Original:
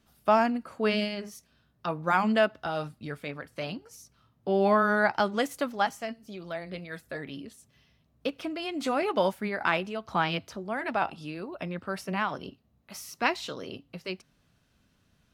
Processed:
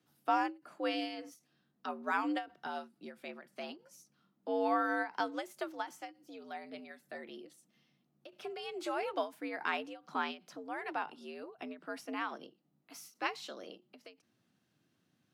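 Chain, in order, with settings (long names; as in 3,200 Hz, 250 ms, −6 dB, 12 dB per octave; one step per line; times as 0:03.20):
frequency shifter +80 Hz
every ending faded ahead of time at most 210 dB per second
level −8.5 dB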